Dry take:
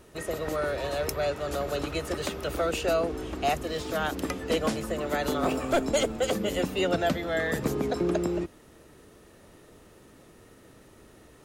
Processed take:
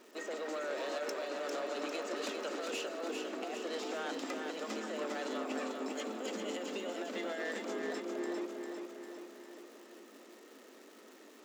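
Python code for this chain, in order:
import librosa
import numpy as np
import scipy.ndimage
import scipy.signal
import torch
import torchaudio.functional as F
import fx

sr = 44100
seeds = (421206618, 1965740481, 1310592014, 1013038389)

p1 = scipy.signal.sosfilt(scipy.signal.cheby1(6, 1.0, 7600.0, 'lowpass', fs=sr, output='sos'), x)
p2 = fx.over_compress(p1, sr, threshold_db=-30.0, ratio=-0.5)
p3 = fx.dmg_crackle(p2, sr, seeds[0], per_s=290.0, level_db=-44.0)
p4 = 10.0 ** (-29.0 / 20.0) * np.tanh(p3 / 10.0 ** (-29.0 / 20.0))
p5 = fx.brickwall_highpass(p4, sr, low_hz=210.0)
p6 = p5 + fx.echo_feedback(p5, sr, ms=400, feedback_pct=57, wet_db=-5.0, dry=0)
y = p6 * 10.0 ** (-5.0 / 20.0)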